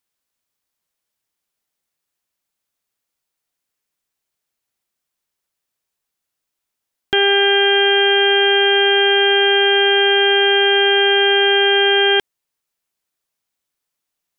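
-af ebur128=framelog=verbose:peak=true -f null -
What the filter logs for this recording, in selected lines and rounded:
Integrated loudness:
  I:         -12.6 LUFS
  Threshold: -22.6 LUFS
Loudness range:
  LRA:         6.5 LU
  Threshold: -33.9 LUFS
  LRA low:   -18.8 LUFS
  LRA high:  -12.3 LUFS
True peak:
  Peak:       -6.4 dBFS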